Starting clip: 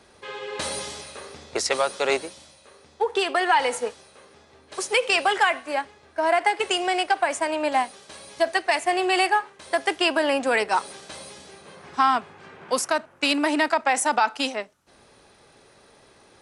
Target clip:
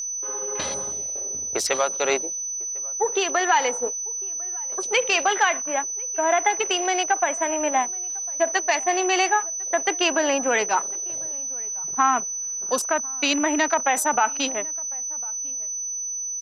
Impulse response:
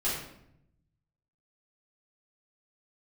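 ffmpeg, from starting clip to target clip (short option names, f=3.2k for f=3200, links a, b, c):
-filter_complex "[0:a]afwtdn=0.0178,aeval=exprs='val(0)+0.0447*sin(2*PI*6000*n/s)':c=same,asplit=2[a][b];[b]adelay=1050,volume=-24dB,highshelf=f=4k:g=-23.6[c];[a][c]amix=inputs=2:normalize=0"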